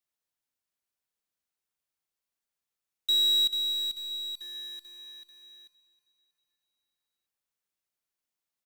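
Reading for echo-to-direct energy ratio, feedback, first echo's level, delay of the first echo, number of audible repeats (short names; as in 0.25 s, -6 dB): -16.5 dB, 55%, -18.0 dB, 0.318 s, 4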